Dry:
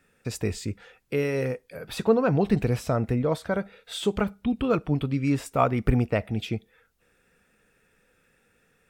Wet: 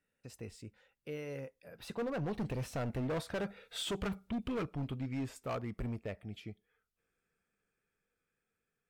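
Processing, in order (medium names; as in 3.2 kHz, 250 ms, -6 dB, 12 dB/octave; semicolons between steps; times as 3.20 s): Doppler pass-by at 3.62 s, 17 m/s, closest 11 m; overload inside the chain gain 28.5 dB; trim -4 dB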